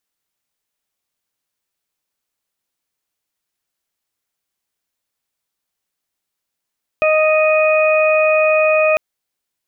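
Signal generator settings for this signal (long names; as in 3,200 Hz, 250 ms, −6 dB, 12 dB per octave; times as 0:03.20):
steady harmonic partials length 1.95 s, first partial 622 Hz, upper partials −9.5/−20/−5 dB, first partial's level −12 dB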